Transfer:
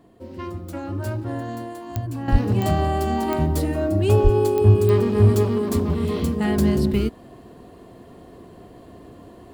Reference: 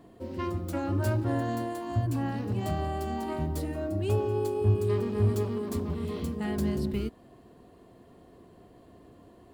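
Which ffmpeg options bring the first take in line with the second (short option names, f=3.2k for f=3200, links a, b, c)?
-filter_complex "[0:a]adeclick=t=4,asplit=3[a][b][c];[a]afade=t=out:st=2.31:d=0.02[d];[b]highpass=f=140:w=0.5412,highpass=f=140:w=1.3066,afade=t=in:st=2.31:d=0.02,afade=t=out:st=2.43:d=0.02[e];[c]afade=t=in:st=2.43:d=0.02[f];[d][e][f]amix=inputs=3:normalize=0,asplit=3[g][h][i];[g]afade=t=out:st=4.23:d=0.02[j];[h]highpass=f=140:w=0.5412,highpass=f=140:w=1.3066,afade=t=in:st=4.23:d=0.02,afade=t=out:st=4.35:d=0.02[k];[i]afade=t=in:st=4.35:d=0.02[l];[j][k][l]amix=inputs=3:normalize=0,asetnsamples=n=441:p=0,asendcmd='2.28 volume volume -10dB',volume=0dB"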